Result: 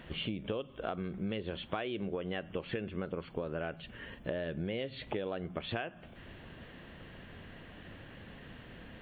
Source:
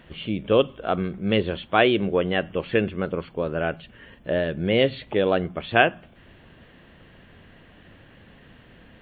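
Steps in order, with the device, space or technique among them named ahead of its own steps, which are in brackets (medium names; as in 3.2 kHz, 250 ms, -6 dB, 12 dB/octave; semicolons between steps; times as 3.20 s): serial compression, leveller first (compression 3:1, threshold -23 dBFS, peak gain reduction 9 dB; compression 6:1, threshold -34 dBFS, peak gain reduction 14 dB)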